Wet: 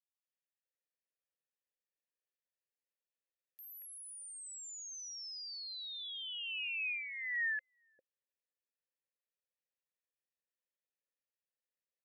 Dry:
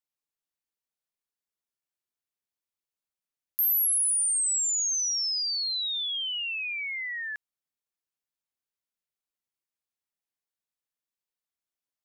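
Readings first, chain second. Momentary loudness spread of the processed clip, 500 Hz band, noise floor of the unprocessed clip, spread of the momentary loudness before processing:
12 LU, no reading, under -85 dBFS, 11 LU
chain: vowel filter e; three bands offset in time highs, mids, lows 230/630 ms, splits 580/2900 Hz; trim +7.5 dB

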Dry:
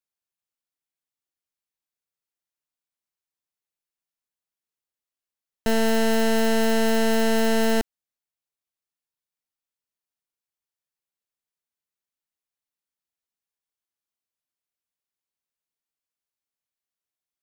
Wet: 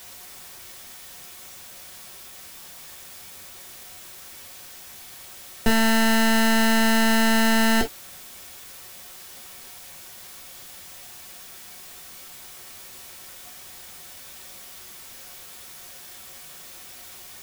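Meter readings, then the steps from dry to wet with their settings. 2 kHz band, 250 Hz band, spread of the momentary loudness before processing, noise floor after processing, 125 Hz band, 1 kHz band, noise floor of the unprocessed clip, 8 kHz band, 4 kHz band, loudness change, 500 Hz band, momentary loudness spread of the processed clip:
+6.5 dB, +2.5 dB, 5 LU, -43 dBFS, no reading, +4.0 dB, under -85 dBFS, +6.0 dB, +5.5 dB, +2.5 dB, -5.5 dB, 21 LU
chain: added noise white -48 dBFS; gated-style reverb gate 80 ms falling, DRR 0.5 dB; trim +2.5 dB

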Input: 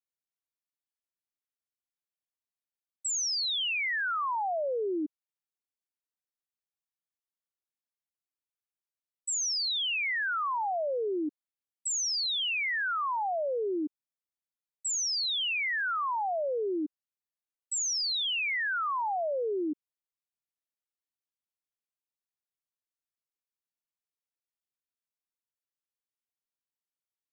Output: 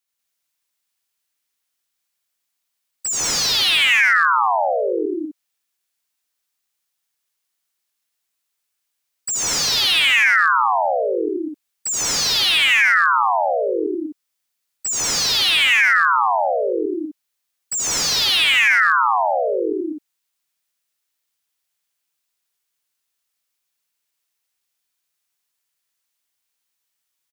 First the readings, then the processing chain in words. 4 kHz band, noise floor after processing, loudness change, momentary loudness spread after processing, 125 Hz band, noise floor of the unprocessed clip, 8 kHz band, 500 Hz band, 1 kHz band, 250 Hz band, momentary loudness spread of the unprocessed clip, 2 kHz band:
+13.0 dB, -77 dBFS, +13.5 dB, 15 LU, no reading, under -85 dBFS, +10.5 dB, +10.5 dB, +13.5 dB, +9.5 dB, 8 LU, +15.5 dB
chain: tilt shelf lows -5.5 dB; loudspeakers at several distances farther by 28 m -2 dB, 52 m -11 dB, 66 m 0 dB, 86 m -4 dB; slew-rate limiter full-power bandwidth 220 Hz; trim +8.5 dB

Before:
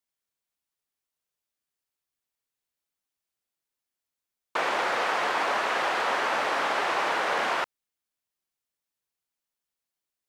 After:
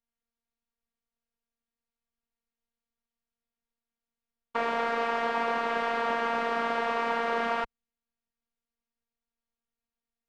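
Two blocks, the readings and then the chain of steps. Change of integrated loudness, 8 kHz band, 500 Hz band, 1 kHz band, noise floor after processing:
-2.5 dB, under -10 dB, +0.5 dB, -2.0 dB, under -85 dBFS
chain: RIAA curve playback; robot voice 232 Hz

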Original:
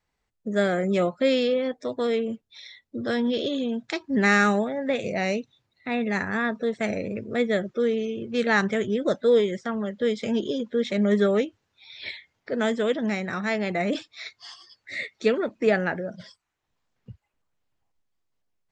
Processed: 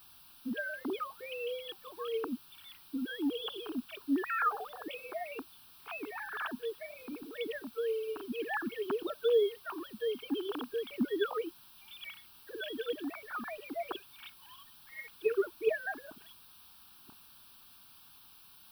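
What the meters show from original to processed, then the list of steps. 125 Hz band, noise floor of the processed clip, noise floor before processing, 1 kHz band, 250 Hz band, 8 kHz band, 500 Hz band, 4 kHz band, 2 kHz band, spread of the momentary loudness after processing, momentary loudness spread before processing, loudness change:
under -25 dB, -57 dBFS, -78 dBFS, -8.5 dB, -13.0 dB, no reading, -10.5 dB, -9.0 dB, -12.0 dB, 21 LU, 15 LU, -11.5 dB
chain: formants replaced by sine waves; added noise white -55 dBFS; static phaser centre 2 kHz, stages 6

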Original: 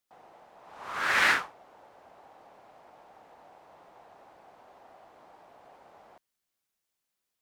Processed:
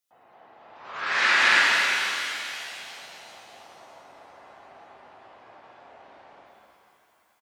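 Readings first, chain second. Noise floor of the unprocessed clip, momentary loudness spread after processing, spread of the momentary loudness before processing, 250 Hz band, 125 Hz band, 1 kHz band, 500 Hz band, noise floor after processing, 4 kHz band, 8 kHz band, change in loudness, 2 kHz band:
-85 dBFS, 22 LU, 17 LU, +3.5 dB, no reading, +5.5 dB, +4.5 dB, -65 dBFS, +11.0 dB, +9.0 dB, +4.0 dB, +7.5 dB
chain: treble shelf 2 kHz +7 dB; on a send: loudspeakers at several distances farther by 78 m -1 dB, 94 m -2 dB; on the sum: spectral gate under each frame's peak -25 dB strong; pitch-shifted reverb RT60 2.8 s, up +7 st, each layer -8 dB, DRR -5.5 dB; trim -6.5 dB

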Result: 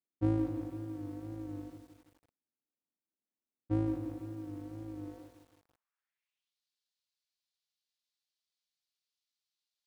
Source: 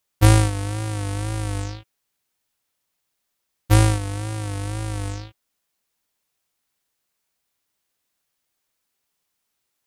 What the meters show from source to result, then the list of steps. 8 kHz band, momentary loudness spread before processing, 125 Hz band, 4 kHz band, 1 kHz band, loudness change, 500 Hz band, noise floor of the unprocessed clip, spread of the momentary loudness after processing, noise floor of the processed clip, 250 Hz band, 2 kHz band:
under -35 dB, 15 LU, -20.0 dB, under -30 dB, -22.0 dB, -15.5 dB, -12.5 dB, -77 dBFS, 16 LU, under -85 dBFS, -6.5 dB, -28.5 dB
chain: band-pass sweep 270 Hz -> 4.2 kHz, 4.97–6.59 s; bit-crushed delay 164 ms, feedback 55%, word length 9-bit, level -8.5 dB; trim -5.5 dB

